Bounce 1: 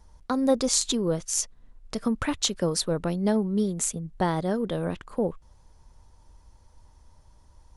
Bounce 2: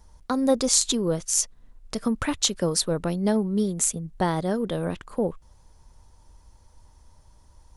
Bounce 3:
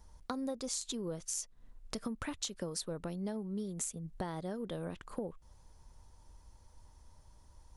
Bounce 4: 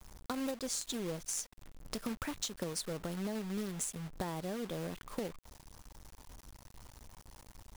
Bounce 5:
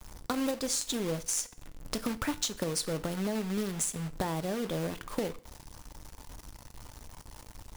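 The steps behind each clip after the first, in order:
high shelf 6800 Hz +5.5 dB; gain +1 dB
compressor 6:1, threshold -31 dBFS, peak gain reduction 15 dB; gain -5 dB
companded quantiser 4-bit
FDN reverb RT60 0.49 s, low-frequency decay 0.95×, high-frequency decay 0.95×, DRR 12 dB; gain +6 dB

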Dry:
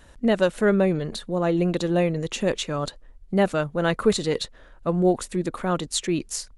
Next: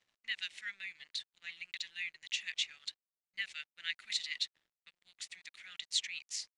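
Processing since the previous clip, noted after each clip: elliptic high-pass 2000 Hz, stop band 50 dB; crossover distortion -58.5 dBFS; air absorption 120 m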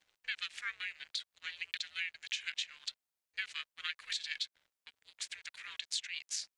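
HPF 190 Hz 24 dB/oct; compressor 6:1, threshold -39 dBFS, peak gain reduction 11 dB; ring modulator 260 Hz; gain +7.5 dB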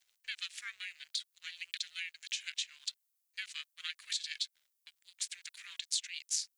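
pre-emphasis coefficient 0.9; gain +6.5 dB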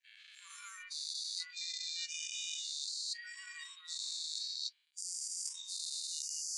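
spectral dilation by 0.48 s; spectral noise reduction 26 dB; reverse; compressor 10:1, threshold -38 dBFS, peak gain reduction 16 dB; reverse; gain +1 dB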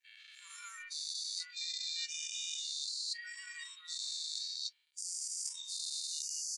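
comb 2.2 ms, depth 45%

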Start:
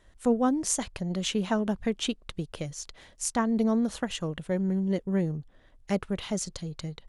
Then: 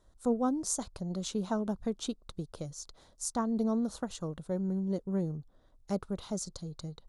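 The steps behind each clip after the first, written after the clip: band shelf 2300 Hz -12.5 dB 1.1 oct; gain -5 dB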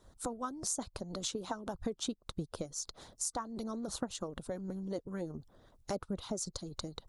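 harmonic-percussive split harmonic -16 dB; compressor 3:1, threshold -48 dBFS, peak gain reduction 13.5 dB; gain +10.5 dB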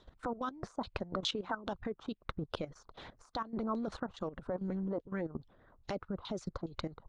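level quantiser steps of 14 dB; LFO low-pass saw down 2.4 Hz 990–3800 Hz; gain +6 dB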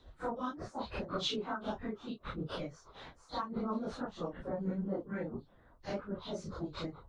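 phase scrambler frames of 0.1 s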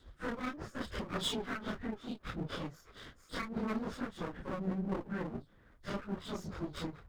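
minimum comb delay 0.59 ms; gain +1 dB

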